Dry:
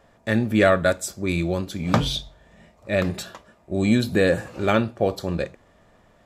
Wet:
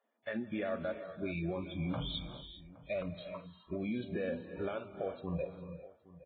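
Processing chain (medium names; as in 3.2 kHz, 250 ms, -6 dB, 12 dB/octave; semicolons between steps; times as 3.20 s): spectral noise reduction 19 dB; dynamic bell 590 Hz, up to +5 dB, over -34 dBFS, Q 2; compression 5:1, threshold -26 dBFS, peak gain reduction 15 dB; peak limiter -23 dBFS, peak gain reduction 10 dB; distance through air 59 m; echo from a far wall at 140 m, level -19 dB; gated-style reverb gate 430 ms rising, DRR 9 dB; resampled via 8 kHz; trim -5 dB; Vorbis 16 kbps 16 kHz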